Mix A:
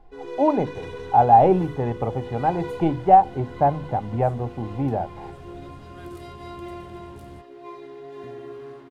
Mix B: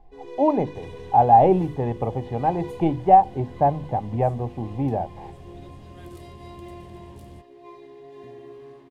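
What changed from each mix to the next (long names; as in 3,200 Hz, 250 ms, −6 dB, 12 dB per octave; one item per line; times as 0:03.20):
first sound −4.5 dB
master: add parametric band 1,400 Hz −14 dB 0.21 octaves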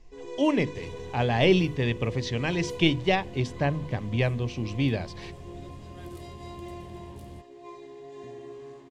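speech: remove low-pass with resonance 800 Hz, resonance Q 9.8
first sound: add low-pass with resonance 7,300 Hz, resonance Q 3.8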